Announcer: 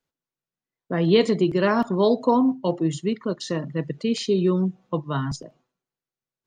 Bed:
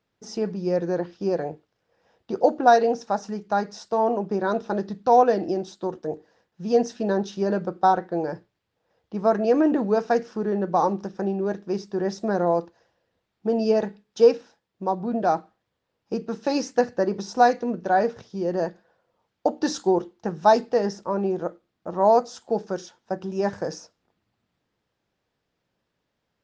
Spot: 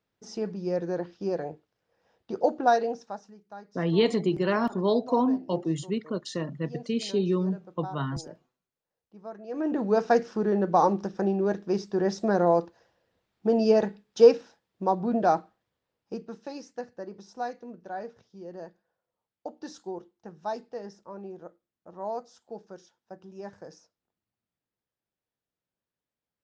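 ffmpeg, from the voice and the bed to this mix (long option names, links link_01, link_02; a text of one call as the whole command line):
ffmpeg -i stem1.wav -i stem2.wav -filter_complex "[0:a]adelay=2850,volume=-5dB[link_01];[1:a]volume=15.5dB,afade=type=out:start_time=2.63:duration=0.71:silence=0.16788,afade=type=in:start_time=9.48:duration=0.57:silence=0.0944061,afade=type=out:start_time=15.14:duration=1.41:silence=0.158489[link_02];[link_01][link_02]amix=inputs=2:normalize=0" out.wav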